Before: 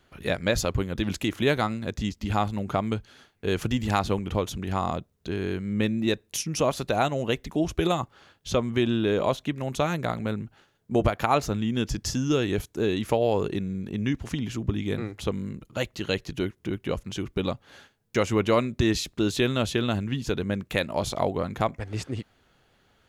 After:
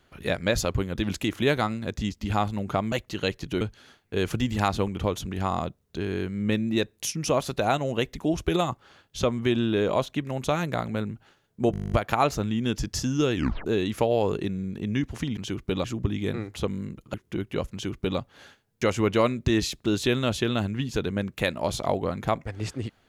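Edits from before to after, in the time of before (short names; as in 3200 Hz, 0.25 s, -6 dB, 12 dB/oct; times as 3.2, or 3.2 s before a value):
11.03 stutter 0.02 s, 11 plays
12.46 tape stop 0.31 s
15.78–16.47 move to 2.92
17.05–17.52 copy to 14.48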